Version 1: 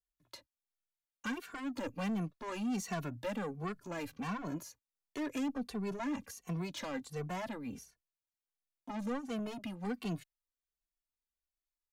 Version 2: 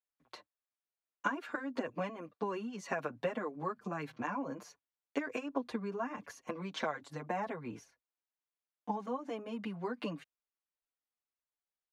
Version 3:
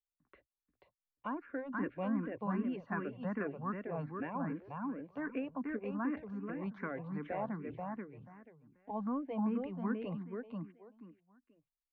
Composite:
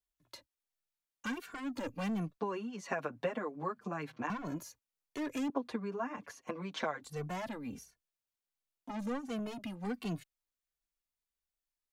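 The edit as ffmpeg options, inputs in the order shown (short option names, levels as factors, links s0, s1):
-filter_complex "[1:a]asplit=2[s0][s1];[0:a]asplit=3[s2][s3][s4];[s2]atrim=end=2.382[s5];[s0]atrim=start=2.378:end=4.302[s6];[s3]atrim=start=4.298:end=5.502[s7];[s1]atrim=start=5.498:end=7.042[s8];[s4]atrim=start=7.038[s9];[s5][s6]acrossfade=d=0.004:c1=hsin:c2=hsin[s10];[s10][s7]acrossfade=d=0.004:c1=hsin:c2=hsin[s11];[s11][s8]acrossfade=d=0.004:c1=hsin:c2=hsin[s12];[s12][s9]acrossfade=d=0.004:c1=hsin:c2=hsin"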